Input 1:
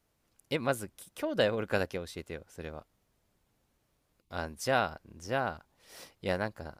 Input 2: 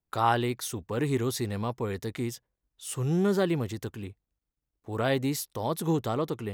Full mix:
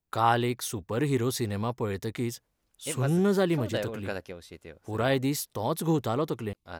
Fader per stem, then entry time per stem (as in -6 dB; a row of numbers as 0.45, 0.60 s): -4.5, +1.0 dB; 2.35, 0.00 s